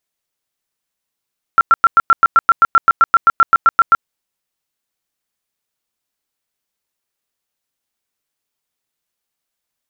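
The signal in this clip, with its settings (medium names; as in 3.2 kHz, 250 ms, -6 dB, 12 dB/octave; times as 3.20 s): tone bursts 1.36 kHz, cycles 40, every 0.13 s, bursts 19, -4.5 dBFS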